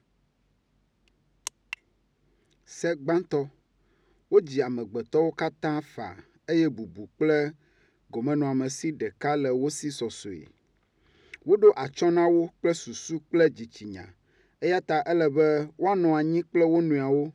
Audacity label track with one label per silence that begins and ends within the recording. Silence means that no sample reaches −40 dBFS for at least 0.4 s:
1.740000	2.710000	silence
3.470000	4.320000	silence
7.510000	8.130000	silence
10.470000	11.340000	silence
14.050000	14.620000	silence